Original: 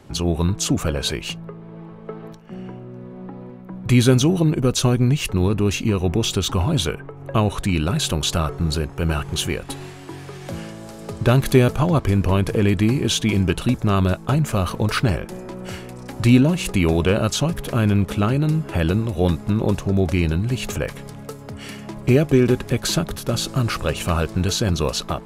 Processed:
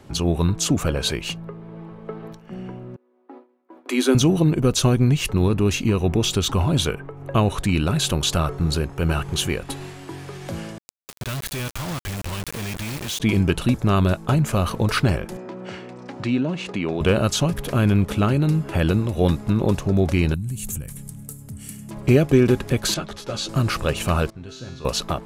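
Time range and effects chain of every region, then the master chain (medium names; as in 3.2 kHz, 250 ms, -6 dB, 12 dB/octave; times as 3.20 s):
2.96–4.15 s: gate with hold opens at -25 dBFS, closes at -28 dBFS + rippled Chebyshev high-pass 250 Hz, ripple 3 dB
10.78–13.20 s: amplifier tone stack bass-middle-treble 5-5-5 + compression 2:1, threshold -36 dBFS + companded quantiser 2-bit
15.37–17.01 s: high-pass 180 Hz + compression 1.5:1, threshold -27 dBFS + distance through air 130 m
20.34–21.91 s: compression 2.5:1, threshold -25 dBFS + FFT filter 190 Hz 0 dB, 450 Hz -17 dB, 1.1 kHz -17 dB, 5 kHz -9 dB, 8.4 kHz +9 dB
22.94–23.49 s: low-pass 5.8 kHz + tone controls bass -7 dB, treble +4 dB + three-phase chorus
24.30–24.85 s: distance through air 80 m + feedback comb 130 Hz, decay 1 s, mix 90%
whole clip: none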